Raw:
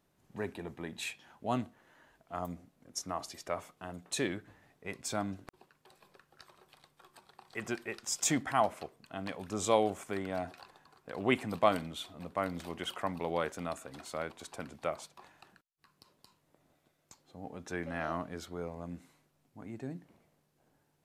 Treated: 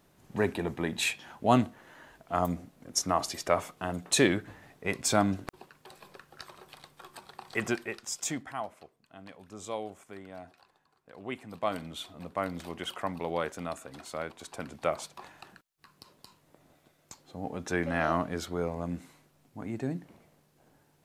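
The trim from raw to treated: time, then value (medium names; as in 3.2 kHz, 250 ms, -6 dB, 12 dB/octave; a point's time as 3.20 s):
7.51 s +10 dB
8.14 s -1.5 dB
8.66 s -9 dB
11.43 s -9 dB
11.96 s +1.5 dB
14.39 s +1.5 dB
15.16 s +8 dB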